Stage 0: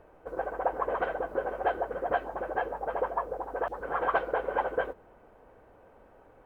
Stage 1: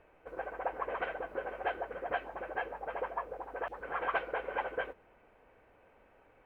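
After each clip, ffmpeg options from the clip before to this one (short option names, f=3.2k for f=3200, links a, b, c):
-af "equalizer=f=2.4k:w=1.4:g=13,volume=-8dB"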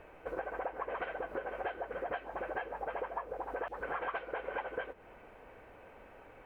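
-af "acompressor=threshold=-44dB:ratio=6,volume=8.5dB"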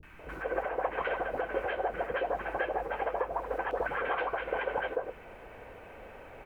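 -filter_complex "[0:a]acrossover=split=280|1100[a][b][c];[c]adelay=30[d];[b]adelay=190[e];[a][e][d]amix=inputs=3:normalize=0,volume=8dB"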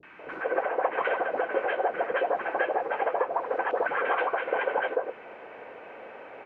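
-af "highpass=290,lowpass=3.2k,volume=5.5dB"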